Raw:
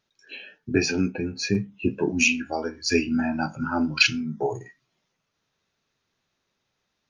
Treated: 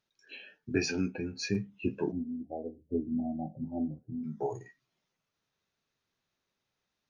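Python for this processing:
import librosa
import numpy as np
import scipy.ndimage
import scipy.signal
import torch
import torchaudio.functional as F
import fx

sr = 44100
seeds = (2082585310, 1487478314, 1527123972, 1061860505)

y = fx.cheby_ripple(x, sr, hz=760.0, ripple_db=3, at=(2.11, 4.23), fade=0.02)
y = y * 10.0 ** (-7.5 / 20.0)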